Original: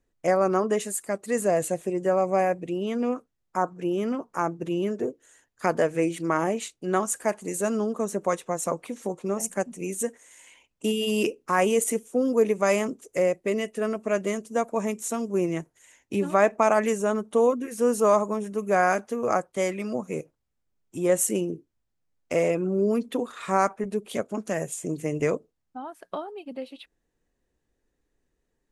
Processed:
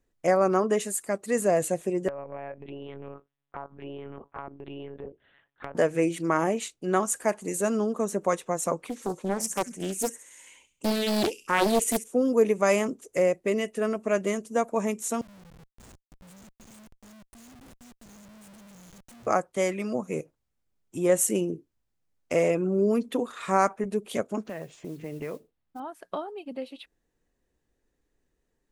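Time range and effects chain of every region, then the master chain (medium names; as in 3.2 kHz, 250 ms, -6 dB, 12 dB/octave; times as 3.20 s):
2.08–5.75 s: monotone LPC vocoder at 8 kHz 140 Hz + compression 4:1, threshold -34 dBFS + bass shelf 130 Hz -10.5 dB
8.77–12.04 s: band-stop 690 Hz, Q 6.4 + feedback echo behind a high-pass 67 ms, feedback 39%, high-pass 4.3 kHz, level -4.5 dB + loudspeaker Doppler distortion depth 0.7 ms
15.21–19.27 s: elliptic band-stop 120–7100 Hz, stop band 70 dB + compressor with a negative ratio -49 dBFS, ratio -0.5 + Schmitt trigger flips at -50 dBFS
24.44–25.80 s: low-pass 4.2 kHz 24 dB/octave + compression 2.5:1, threshold -36 dBFS + modulation noise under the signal 23 dB
whole clip: none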